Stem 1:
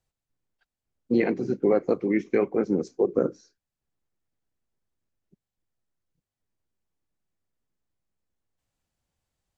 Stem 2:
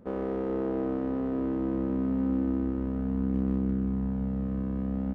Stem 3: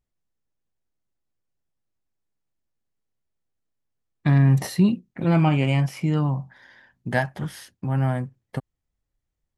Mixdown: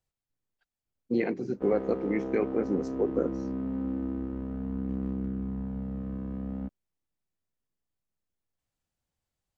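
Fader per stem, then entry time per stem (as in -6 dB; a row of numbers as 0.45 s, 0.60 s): -5.0 dB, -4.5 dB, mute; 0.00 s, 1.55 s, mute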